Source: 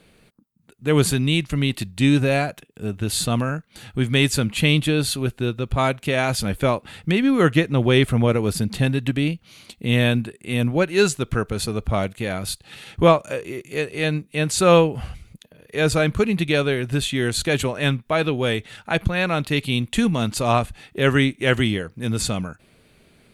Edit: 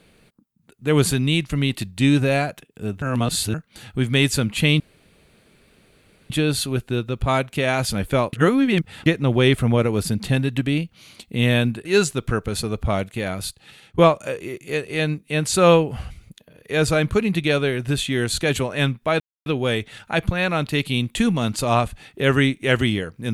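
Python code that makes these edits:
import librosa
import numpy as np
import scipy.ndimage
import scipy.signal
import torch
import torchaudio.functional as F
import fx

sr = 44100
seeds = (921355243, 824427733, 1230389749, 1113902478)

y = fx.edit(x, sr, fx.reverse_span(start_s=3.02, length_s=0.52),
    fx.insert_room_tone(at_s=4.8, length_s=1.5),
    fx.reverse_span(start_s=6.83, length_s=0.73),
    fx.cut(start_s=10.35, length_s=0.54),
    fx.fade_out_to(start_s=12.37, length_s=0.65, floor_db=-13.5),
    fx.insert_silence(at_s=18.24, length_s=0.26), tone=tone)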